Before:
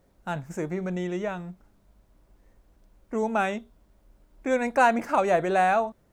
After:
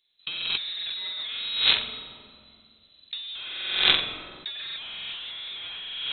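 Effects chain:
noise gate −59 dBFS, range −12 dB
low-shelf EQ 170 Hz −7.5 dB
flutter between parallel walls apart 7.8 metres, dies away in 1.1 s
leveller curve on the samples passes 5
voice inversion scrambler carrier 4,000 Hz
convolution reverb RT60 2.2 s, pre-delay 3 ms, DRR 15.5 dB
compressor whose output falls as the input rises −29 dBFS, ratio −1
level −3 dB

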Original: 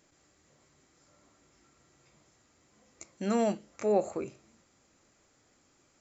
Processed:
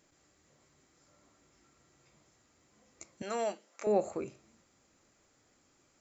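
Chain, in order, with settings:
0:03.22–0:03.87: high-pass filter 510 Hz 12 dB per octave
level −2 dB

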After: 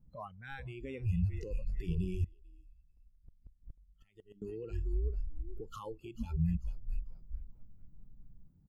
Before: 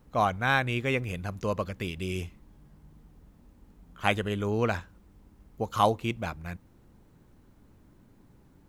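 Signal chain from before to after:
downward compressor 16 to 1, threshold −35 dBFS, peak gain reduction 19 dB
low shelf with overshoot 240 Hz +8.5 dB, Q 1.5
echo with shifted repeats 441 ms, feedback 47%, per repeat −55 Hz, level −8 dB
brickwall limiter −28.5 dBFS, peak gain reduction 9 dB
tilt shelving filter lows +8 dB, about 760 Hz
noise reduction from a noise print of the clip's start 24 dB
0:02.24–0:04.42: gate with flip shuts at −36 dBFS, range −24 dB
level +1 dB

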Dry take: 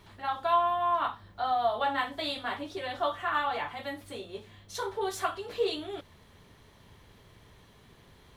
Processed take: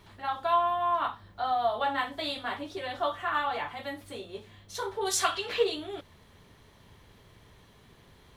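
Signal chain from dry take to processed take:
0:05.05–0:05.62: parametric band 8,800 Hz → 1,800 Hz +14 dB 2.4 octaves

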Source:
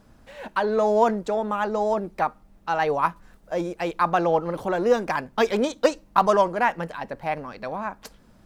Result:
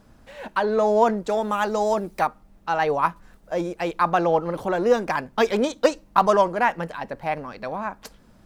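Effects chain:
0:01.28–0:02.26: high-shelf EQ 3,100 Hz → 4,500 Hz +12 dB
level +1 dB

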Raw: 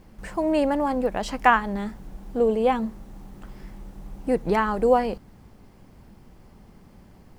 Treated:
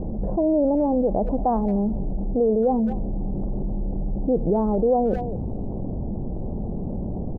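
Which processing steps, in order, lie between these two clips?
Butterworth low-pass 720 Hz 36 dB per octave
far-end echo of a speakerphone 220 ms, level −24 dB
envelope flattener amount 70%
level −2.5 dB

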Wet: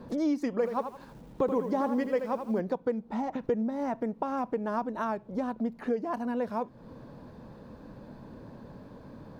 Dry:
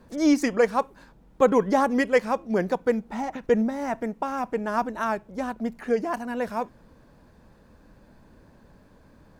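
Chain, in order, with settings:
graphic EQ with 10 bands 125 Hz +10 dB, 250 Hz +8 dB, 500 Hz +8 dB, 1,000 Hz +7 dB, 4,000 Hz +6 dB, 8,000 Hz −4 dB
downward compressor 3 to 1, threshold −30 dBFS, peak gain reduction 20 dB
0:00.52–0:02.60: feedback echo at a low word length 81 ms, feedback 35%, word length 9 bits, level −8 dB
level −2 dB

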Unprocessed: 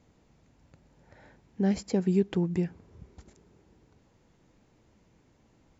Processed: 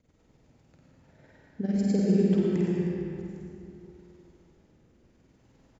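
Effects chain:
rotating-speaker cabinet horn 8 Hz, later 0.65 Hz, at 0:00.61
amplitude modulation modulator 20 Hz, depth 55%
reverse bouncing-ball delay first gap 50 ms, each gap 1.3×, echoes 5
comb and all-pass reverb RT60 2.8 s, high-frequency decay 0.65×, pre-delay 45 ms, DRR −3 dB

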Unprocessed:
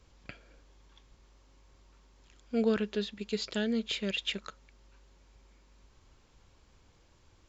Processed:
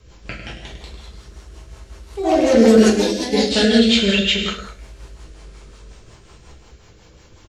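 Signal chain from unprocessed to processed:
delay with pitch and tempo change per echo 222 ms, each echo +3 semitones, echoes 3
on a send: single-tap delay 101 ms −4 dB
0:02.90–0:03.51: on the sum: downward expander −24 dBFS
reverb whose tail is shaped and stops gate 220 ms falling, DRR −4 dB
rotating-speaker cabinet horn 5.5 Hz
boost into a limiter +13 dB
level −1 dB

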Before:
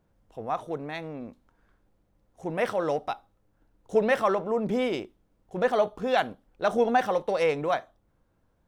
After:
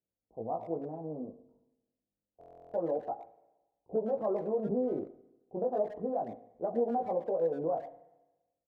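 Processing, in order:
high-pass filter 180 Hz 6 dB per octave
noise gate with hold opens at −53 dBFS
inverse Chebyshev low-pass filter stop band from 1,900 Hz, stop band 50 dB
downward compressor 6 to 1, threshold −27 dBFS, peak gain reduction 9.5 dB
chorus effect 0.29 Hz, delay 17 ms, depth 3.4 ms
far-end echo of a speakerphone 110 ms, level −14 dB
spring reverb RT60 1.1 s, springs 35/46 ms, chirp 60 ms, DRR 16 dB
buffer that repeats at 0:02.39, samples 1,024, times 14
level +2 dB

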